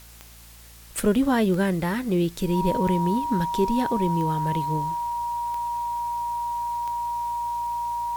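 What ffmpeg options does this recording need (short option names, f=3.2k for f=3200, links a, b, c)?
-af "adeclick=t=4,bandreject=f=57.1:t=h:w=4,bandreject=f=114.2:t=h:w=4,bandreject=f=171.3:t=h:w=4,bandreject=f=228.4:t=h:w=4,bandreject=f=950:w=30,afwtdn=0.0035"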